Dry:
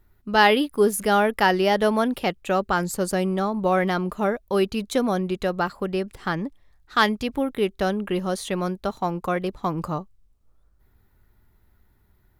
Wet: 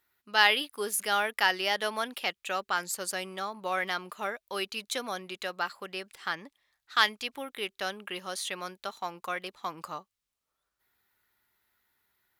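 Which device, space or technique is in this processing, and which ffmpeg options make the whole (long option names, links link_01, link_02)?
filter by subtraction: -filter_complex "[0:a]asplit=2[link_01][link_02];[link_02]lowpass=2700,volume=-1[link_03];[link_01][link_03]amix=inputs=2:normalize=0,volume=-2dB"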